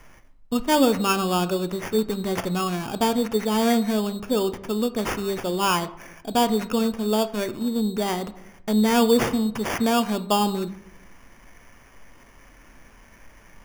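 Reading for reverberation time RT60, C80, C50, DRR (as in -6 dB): 0.75 s, 18.5 dB, 16.0 dB, 10.0 dB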